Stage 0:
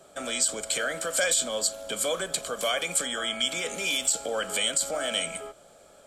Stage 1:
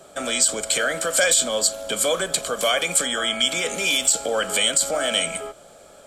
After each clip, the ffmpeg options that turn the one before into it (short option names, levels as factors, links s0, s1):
-af "acontrast=71"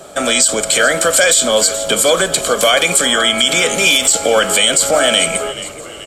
-filter_complex "[0:a]asplit=6[s0][s1][s2][s3][s4][s5];[s1]adelay=429,afreqshift=-81,volume=0.141[s6];[s2]adelay=858,afreqshift=-162,volume=0.0733[s7];[s3]adelay=1287,afreqshift=-243,volume=0.038[s8];[s4]adelay=1716,afreqshift=-324,volume=0.02[s9];[s5]adelay=2145,afreqshift=-405,volume=0.0104[s10];[s0][s6][s7][s8][s9][s10]amix=inputs=6:normalize=0,alimiter=level_in=3.98:limit=0.891:release=50:level=0:latency=1,volume=0.891"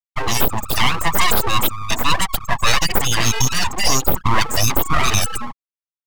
-af "afftfilt=real='re*gte(hypot(re,im),0.447)':imag='im*gte(hypot(re,im),0.447)':win_size=1024:overlap=0.75,aeval=exprs='abs(val(0))':c=same"